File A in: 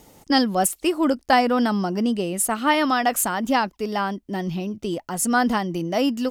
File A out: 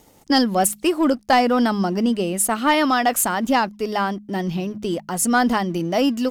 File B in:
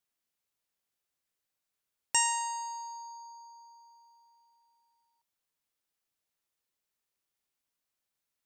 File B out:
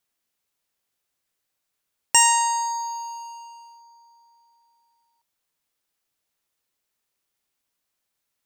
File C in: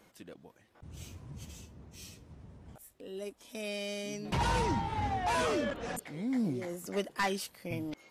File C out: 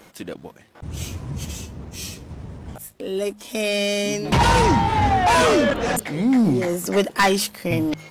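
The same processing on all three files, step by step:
leveller curve on the samples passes 1
hum removal 52.06 Hz, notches 4
loudness normalisation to −20 LKFS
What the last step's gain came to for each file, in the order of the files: −1.0, +8.5, +13.0 decibels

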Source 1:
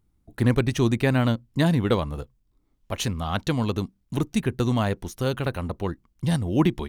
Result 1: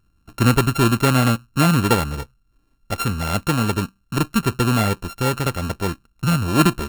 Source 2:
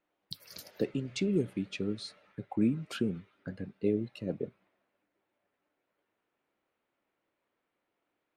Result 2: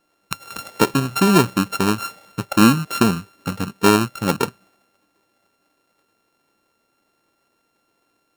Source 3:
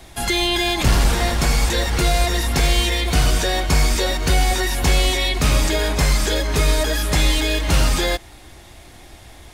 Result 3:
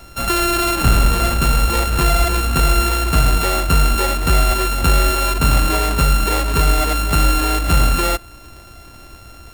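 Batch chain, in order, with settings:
samples sorted by size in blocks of 32 samples
dynamic equaliser 5,600 Hz, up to −6 dB, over −43 dBFS, Q 4
normalise the peak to −2 dBFS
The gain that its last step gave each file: +4.5, +15.0, +2.5 decibels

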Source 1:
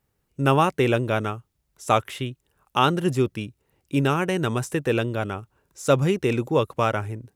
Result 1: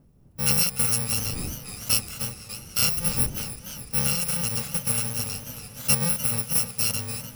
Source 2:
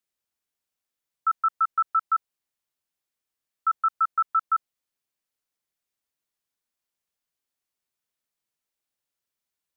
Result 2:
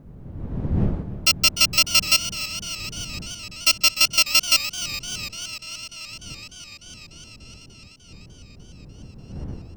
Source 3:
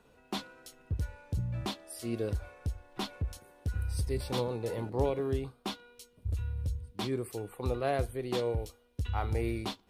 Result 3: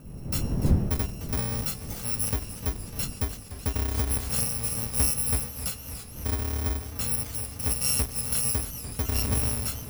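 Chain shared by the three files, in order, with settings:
samples in bit-reversed order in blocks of 128 samples
wind on the microphone 160 Hz −40 dBFS
feedback echo with a swinging delay time 297 ms, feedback 80%, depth 105 cents, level −13 dB
normalise the peak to −9 dBFS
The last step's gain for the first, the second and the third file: −3.0, +5.5, +4.5 decibels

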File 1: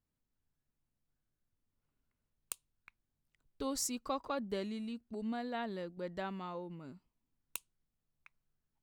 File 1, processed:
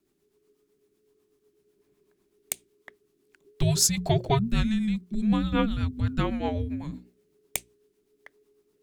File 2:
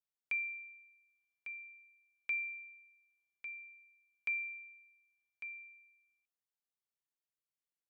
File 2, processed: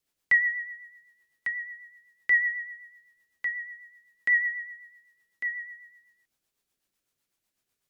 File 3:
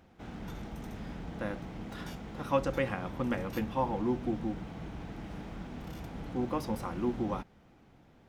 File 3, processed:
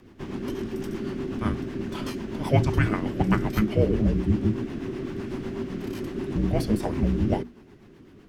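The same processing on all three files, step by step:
frequency shifter −430 Hz
rotating-speaker cabinet horn 8 Hz
mains-hum notches 60/120/180/240/300/360 Hz
loudness normalisation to −27 LKFS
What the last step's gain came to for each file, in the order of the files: +16.5, +16.5, +12.0 decibels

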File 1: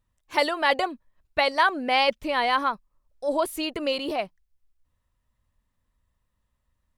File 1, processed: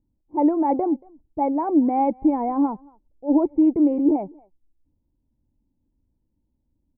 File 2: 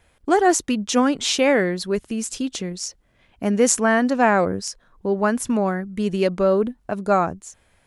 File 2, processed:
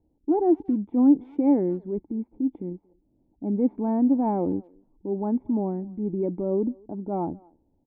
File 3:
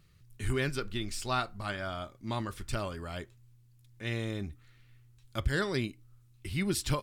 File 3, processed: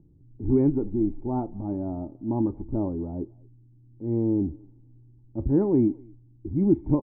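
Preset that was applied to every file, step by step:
transient designer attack −5 dB, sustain +1 dB
formant resonators in series u
low-pass that shuts in the quiet parts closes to 580 Hz, open at −26.5 dBFS
far-end echo of a speakerphone 230 ms, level −26 dB
normalise the peak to −9 dBFS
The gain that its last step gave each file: +17.5, +6.5, +20.5 decibels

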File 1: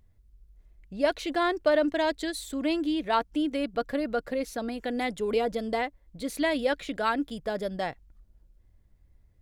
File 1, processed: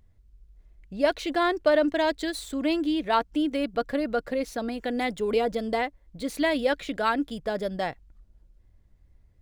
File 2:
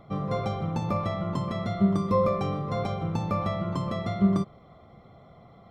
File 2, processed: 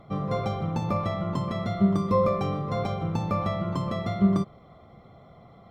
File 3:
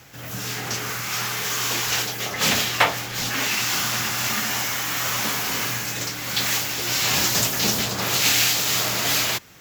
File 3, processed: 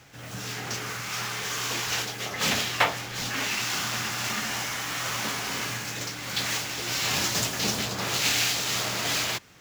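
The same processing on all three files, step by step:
running median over 3 samples
loudness normalisation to −27 LKFS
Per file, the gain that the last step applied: +2.0, +1.0, −4.5 decibels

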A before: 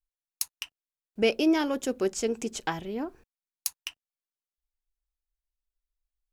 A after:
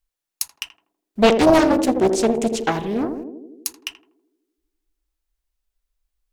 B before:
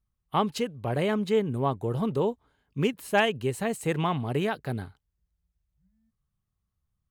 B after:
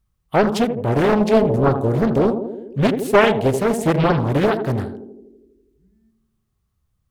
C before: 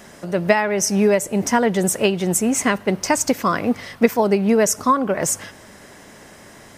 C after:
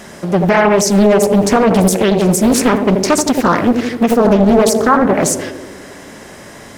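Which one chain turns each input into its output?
feedback echo with a band-pass in the loop 81 ms, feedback 73%, band-pass 340 Hz, level −6 dB
brickwall limiter −11 dBFS
harmonic and percussive parts rebalanced harmonic +3 dB
highs frequency-modulated by the lows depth 0.84 ms
normalise the peak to −1.5 dBFS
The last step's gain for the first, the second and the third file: +7.5, +7.5, +6.5 decibels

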